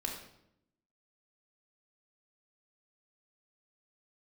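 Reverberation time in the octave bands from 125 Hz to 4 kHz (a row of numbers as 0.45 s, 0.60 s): 1.0 s, 1.1 s, 0.85 s, 0.70 s, 0.65 s, 0.60 s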